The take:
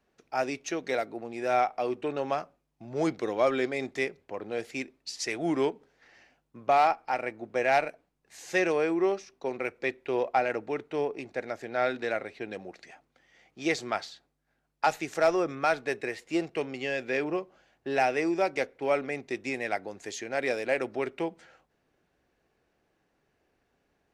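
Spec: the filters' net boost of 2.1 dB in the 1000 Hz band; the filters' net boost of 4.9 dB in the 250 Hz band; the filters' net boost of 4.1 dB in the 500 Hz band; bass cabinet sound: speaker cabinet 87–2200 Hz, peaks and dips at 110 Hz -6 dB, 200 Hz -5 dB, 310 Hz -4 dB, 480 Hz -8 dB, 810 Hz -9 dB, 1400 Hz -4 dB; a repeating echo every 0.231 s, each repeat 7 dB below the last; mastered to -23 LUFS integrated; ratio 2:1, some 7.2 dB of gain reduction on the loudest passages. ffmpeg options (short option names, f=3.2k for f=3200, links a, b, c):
-af "equalizer=f=250:t=o:g=8.5,equalizer=f=500:t=o:g=6.5,equalizer=f=1k:t=o:g=8.5,acompressor=threshold=-24dB:ratio=2,highpass=f=87:w=0.5412,highpass=f=87:w=1.3066,equalizer=f=110:t=q:w=4:g=-6,equalizer=f=200:t=q:w=4:g=-5,equalizer=f=310:t=q:w=4:g=-4,equalizer=f=480:t=q:w=4:g=-8,equalizer=f=810:t=q:w=4:g=-9,equalizer=f=1.4k:t=q:w=4:g=-4,lowpass=f=2.2k:w=0.5412,lowpass=f=2.2k:w=1.3066,aecho=1:1:231|462|693|924|1155:0.447|0.201|0.0905|0.0407|0.0183,volume=8dB"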